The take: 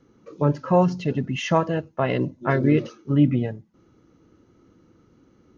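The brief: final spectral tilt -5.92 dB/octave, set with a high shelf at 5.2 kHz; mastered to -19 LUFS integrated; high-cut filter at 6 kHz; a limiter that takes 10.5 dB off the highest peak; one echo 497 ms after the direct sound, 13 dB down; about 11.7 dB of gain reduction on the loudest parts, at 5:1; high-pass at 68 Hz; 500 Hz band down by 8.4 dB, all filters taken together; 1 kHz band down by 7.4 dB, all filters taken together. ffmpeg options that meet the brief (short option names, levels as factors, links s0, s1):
-af "highpass=68,lowpass=6000,equalizer=f=500:t=o:g=-9,equalizer=f=1000:t=o:g=-6,highshelf=f=5200:g=-6,acompressor=threshold=0.0398:ratio=5,alimiter=level_in=1.33:limit=0.0631:level=0:latency=1,volume=0.75,aecho=1:1:497:0.224,volume=7.5"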